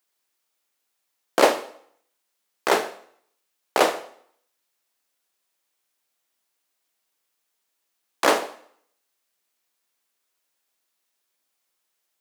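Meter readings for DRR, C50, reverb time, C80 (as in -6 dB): 10.5 dB, 14.5 dB, 0.65 s, 17.5 dB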